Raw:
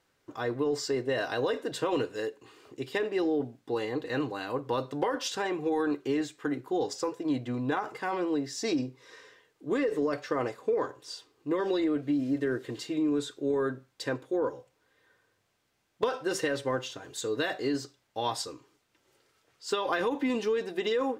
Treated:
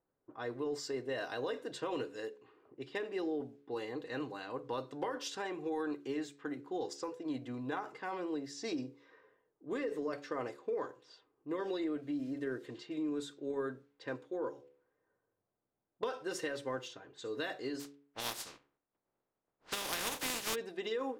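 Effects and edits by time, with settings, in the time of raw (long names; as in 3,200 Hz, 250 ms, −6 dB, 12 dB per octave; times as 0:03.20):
0:17.79–0:20.54: compressing power law on the bin magnitudes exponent 0.25
whole clip: hum removal 70.96 Hz, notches 8; low-pass that shuts in the quiet parts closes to 780 Hz, open at −29 dBFS; parametric band 76 Hz −6 dB 1.5 octaves; level −8 dB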